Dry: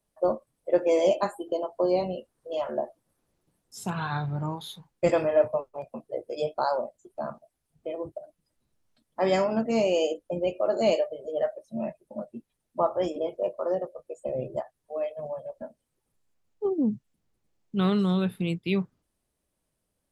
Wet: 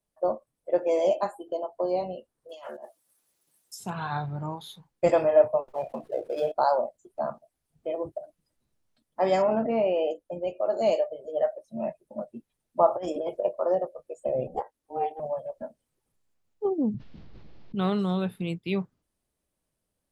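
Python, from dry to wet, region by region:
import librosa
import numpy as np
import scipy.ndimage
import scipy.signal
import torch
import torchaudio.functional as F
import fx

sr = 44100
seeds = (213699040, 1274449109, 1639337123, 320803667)

y = fx.chain(x, sr, fx.tilt_eq(slope=4.0),
    fx.over_compress(threshold_db=-37.0, ratio=-1.0), at=(2.49, 3.8))
y = fx.chain(y, sr, fx.dead_time(dead_ms=0.07),
    fx.bass_treble(bass_db=-4, treble_db=-10),
    fx.env_flatten(amount_pct=50), at=(5.68, 6.52))
y = fx.chain(y, sr, fx.lowpass(hz=2800.0, slope=24),
    fx.env_flatten(amount_pct=70), at=(9.42, 10.11))
y = fx.chain(y, sr, fx.peak_eq(hz=9300.0, db=4.5, octaves=0.67),
    fx.over_compress(threshold_db=-30.0, ratio=-0.5), at=(12.88, 13.45))
y = fx.chain(y, sr, fx.highpass(hz=49.0, slope=12),
    fx.ring_mod(carrier_hz=160.0), at=(14.47, 15.2))
y = fx.chain(y, sr, fx.steep_lowpass(hz=4700.0, slope=36),
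    fx.low_shelf(hz=330.0, db=6.0),
    fx.env_flatten(amount_pct=70), at=(16.94, 17.75))
y = fx.dynamic_eq(y, sr, hz=730.0, q=1.3, threshold_db=-38.0, ratio=4.0, max_db=7)
y = fx.rider(y, sr, range_db=5, speed_s=2.0)
y = y * 10.0 ** (-5.0 / 20.0)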